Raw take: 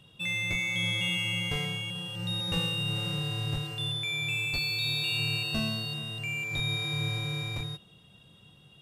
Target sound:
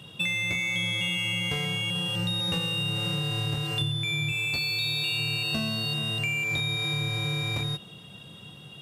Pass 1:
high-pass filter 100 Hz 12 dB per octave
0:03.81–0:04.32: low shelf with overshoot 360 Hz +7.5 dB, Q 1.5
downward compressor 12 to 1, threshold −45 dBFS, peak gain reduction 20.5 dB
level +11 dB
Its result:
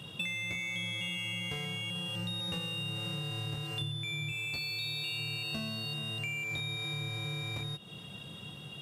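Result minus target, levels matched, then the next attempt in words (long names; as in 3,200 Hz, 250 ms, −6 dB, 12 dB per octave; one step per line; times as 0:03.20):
downward compressor: peak gain reduction +8 dB
high-pass filter 100 Hz 12 dB per octave
0:03.81–0:04.32: low shelf with overshoot 360 Hz +7.5 dB, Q 1.5
downward compressor 12 to 1, threshold −36 dBFS, peak gain reduction 12 dB
level +11 dB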